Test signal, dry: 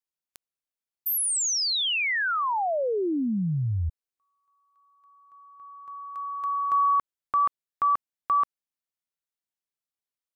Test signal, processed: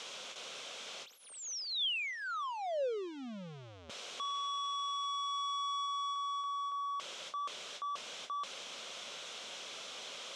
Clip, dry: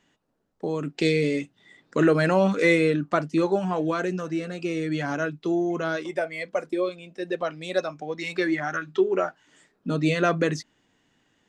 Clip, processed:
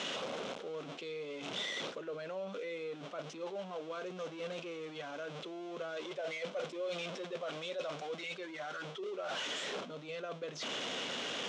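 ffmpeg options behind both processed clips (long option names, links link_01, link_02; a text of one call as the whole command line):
ffmpeg -i in.wav -af "aeval=exprs='val(0)+0.5*0.0447*sgn(val(0))':channel_layout=same,areverse,acompressor=threshold=-31dB:ratio=16:attack=0.14:release=111:knee=1:detection=peak,areverse,highpass=310,equalizer=frequency=310:width_type=q:width=4:gain=-8,equalizer=frequency=540:width_type=q:width=4:gain=5,equalizer=frequency=880:width_type=q:width=4:gain=-5,equalizer=frequency=1800:width_type=q:width=4:gain=-8,equalizer=frequency=3300:width_type=q:width=4:gain=5,equalizer=frequency=4700:width_type=q:width=4:gain=-6,lowpass=frequency=5900:width=0.5412,lowpass=frequency=5900:width=1.3066,volume=-3.5dB" out.wav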